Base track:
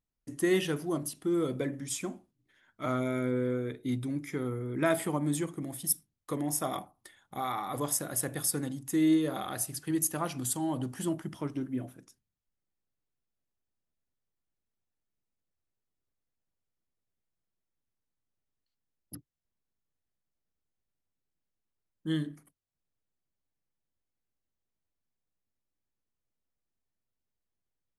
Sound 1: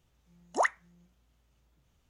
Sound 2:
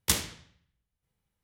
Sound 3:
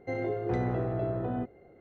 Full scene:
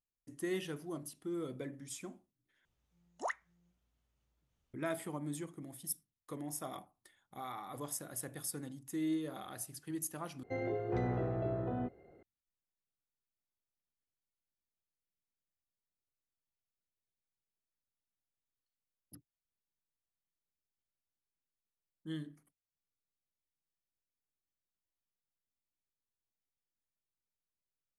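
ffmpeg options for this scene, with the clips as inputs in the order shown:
-filter_complex "[0:a]volume=-10.5dB,asplit=3[a][b][c];[a]atrim=end=2.654[d];[1:a]atrim=end=2.09,asetpts=PTS-STARTPTS,volume=-11.5dB[e];[b]atrim=start=4.736:end=10.434[f];[3:a]atrim=end=1.8,asetpts=PTS-STARTPTS,volume=-5dB[g];[c]atrim=start=12.226[h];[d][e]acrossfade=d=0.004:c1=hsin:c2=hsin[i];[i][f]acrossfade=d=0.004:c1=hsin:c2=hsin[j];[j][g]acrossfade=d=0.004:c1=hsin:c2=hsin[k];[k][h]acrossfade=d=0.004:c1=hsin:c2=hsin"

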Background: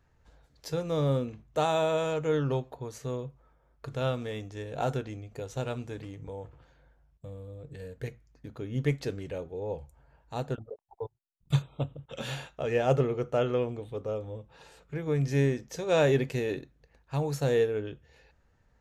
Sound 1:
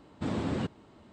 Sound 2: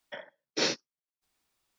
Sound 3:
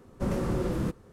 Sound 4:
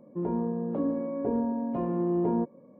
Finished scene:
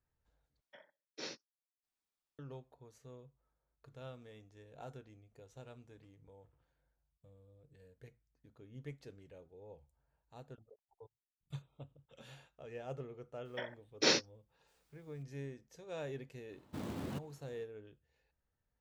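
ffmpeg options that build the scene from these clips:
-filter_complex "[2:a]asplit=2[a][b];[0:a]volume=-19.5dB[c];[1:a]acrusher=bits=4:mode=log:mix=0:aa=0.000001[d];[c]asplit=2[e][f];[e]atrim=end=0.614[g];[a]atrim=end=1.78,asetpts=PTS-STARTPTS,volume=-17dB[h];[f]atrim=start=2.386[i];[b]atrim=end=1.78,asetpts=PTS-STARTPTS,volume=-1dB,afade=t=in:d=0.004:c=hsin,afade=t=out:st=1.776:d=0.004:c=hsin,adelay=13450[j];[d]atrim=end=1.12,asetpts=PTS-STARTPTS,volume=-10.5dB,afade=t=in:d=0.004:c=hsin,afade=t=out:st=1.116:d=0.004:c=hsin,adelay=728532S[k];[g][h]acrossfade=d=0.004:c1=hsin:c2=hsin[l];[l][i]acrossfade=d=0.004:c1=hsin:c2=hsin[m];[m][j][k]amix=inputs=3:normalize=0"

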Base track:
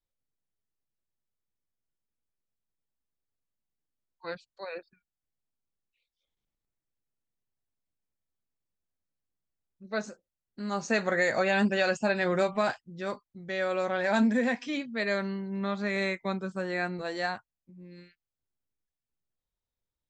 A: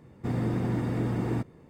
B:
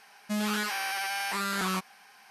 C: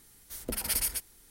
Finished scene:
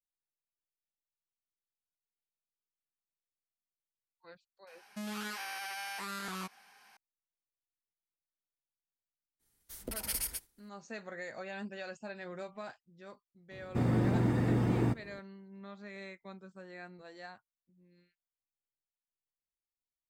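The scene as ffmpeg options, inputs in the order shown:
-filter_complex "[0:a]volume=-17dB[a];[2:a]alimiter=level_in=3.5dB:limit=-24dB:level=0:latency=1:release=71,volume=-3.5dB[b];[3:a]agate=range=-33dB:threshold=-50dB:ratio=3:release=100:detection=peak[c];[b]atrim=end=2.3,asetpts=PTS-STARTPTS,volume=-6dB,afade=t=in:d=0.004:c=hsin,afade=t=out:st=2.296:d=0.004:c=hsin,adelay=4670[d];[c]atrim=end=1.3,asetpts=PTS-STARTPTS,volume=-6dB,afade=t=in:d=0.004:c=hsin,afade=t=out:st=1.296:d=0.004:c=hsin,adelay=9390[e];[1:a]atrim=end=1.69,asetpts=PTS-STARTPTS,volume=-0.5dB,afade=t=in:d=0.004:c=hsin,afade=t=out:st=1.686:d=0.004:c=hsin,adelay=13510[f];[a][d][e][f]amix=inputs=4:normalize=0"

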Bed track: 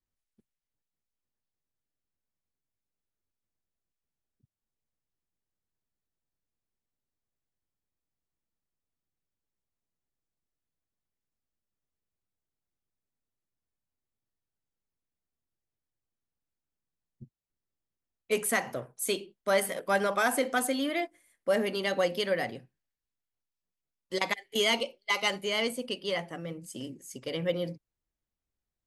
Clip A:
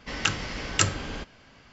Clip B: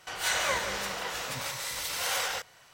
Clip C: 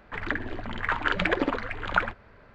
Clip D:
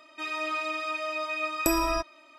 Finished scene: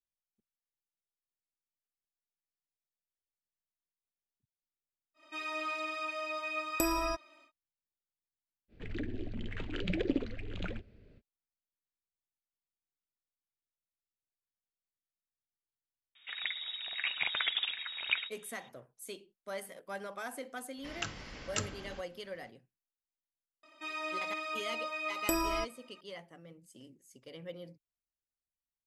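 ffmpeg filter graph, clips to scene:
-filter_complex "[4:a]asplit=2[a][b];[3:a]asplit=2[c][d];[0:a]volume=-15dB[e];[c]firequalizer=gain_entry='entry(360,0);entry(960,-26);entry(2600,-6)':delay=0.05:min_phase=1[f];[d]lowpass=f=3.2k:t=q:w=0.5098,lowpass=f=3.2k:t=q:w=0.6013,lowpass=f=3.2k:t=q:w=0.9,lowpass=f=3.2k:t=q:w=2.563,afreqshift=-3800[g];[a]atrim=end=2.38,asetpts=PTS-STARTPTS,volume=-6dB,afade=t=in:d=0.1,afade=t=out:st=2.28:d=0.1,adelay=5140[h];[f]atrim=end=2.54,asetpts=PTS-STARTPTS,volume=-3dB,afade=t=in:d=0.05,afade=t=out:st=2.49:d=0.05,adelay=8680[i];[g]atrim=end=2.54,asetpts=PTS-STARTPTS,volume=-8dB,afade=t=in:d=0.004:c=hsin,afade=t=out:st=2.536:d=0.004:c=hsin,adelay=16150[j];[1:a]atrim=end=1.72,asetpts=PTS-STARTPTS,volume=-13dB,afade=t=in:d=0.004:c=hsin,afade=t=out:st=1.716:d=0.004:c=hsin,adelay=20770[k];[b]atrim=end=2.38,asetpts=PTS-STARTPTS,volume=-6.5dB,afade=t=in:d=0.004:c=hsin,afade=t=out:st=2.376:d=0.004:c=hsin,adelay=23630[l];[e][h][i][j][k][l]amix=inputs=6:normalize=0"

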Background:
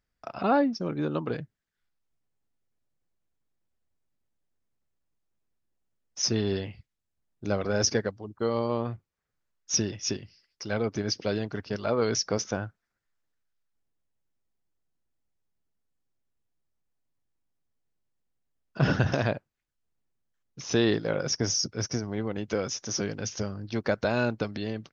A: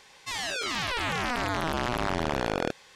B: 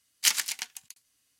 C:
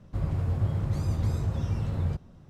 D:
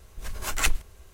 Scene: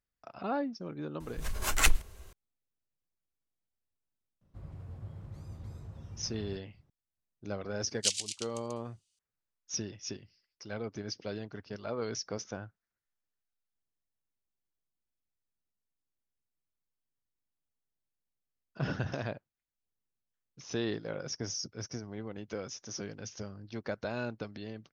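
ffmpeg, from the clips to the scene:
-filter_complex "[0:a]volume=-10dB[a];[2:a]asuperpass=centerf=5200:order=8:qfactor=0.8[b];[4:a]atrim=end=1.13,asetpts=PTS-STARTPTS,volume=-0.5dB,afade=t=in:d=0.004:c=hsin,afade=t=out:st=1.126:d=0.004:c=hsin,adelay=1200[c];[3:a]atrim=end=2.49,asetpts=PTS-STARTPTS,volume=-17.5dB,afade=t=in:d=0.004:c=hsin,afade=t=out:st=2.486:d=0.004:c=hsin,adelay=194481S[d];[b]atrim=end=1.39,asetpts=PTS-STARTPTS,volume=-5dB,afade=t=in:d=0.004:c=hsin,afade=t=out:st=1.386:d=0.004:c=hsin,adelay=7800[e];[a][c][d][e]amix=inputs=4:normalize=0"

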